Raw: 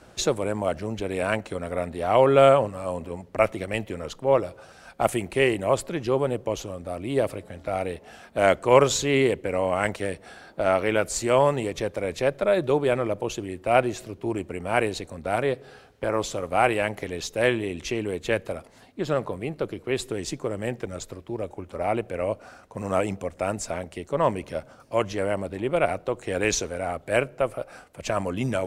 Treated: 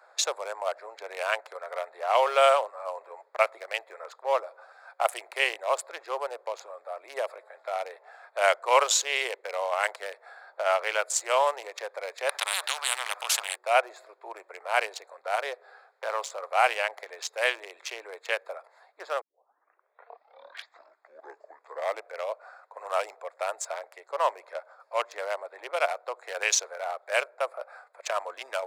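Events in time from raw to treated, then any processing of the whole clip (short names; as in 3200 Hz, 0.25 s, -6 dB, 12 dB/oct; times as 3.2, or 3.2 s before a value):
12.29–13.56 spectral compressor 10:1
19.21 tape start 2.98 s
whole clip: Wiener smoothing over 15 samples; Bessel high-pass 990 Hz, order 8; dynamic EQ 1900 Hz, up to -3 dB, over -43 dBFS, Q 1.1; gain +4.5 dB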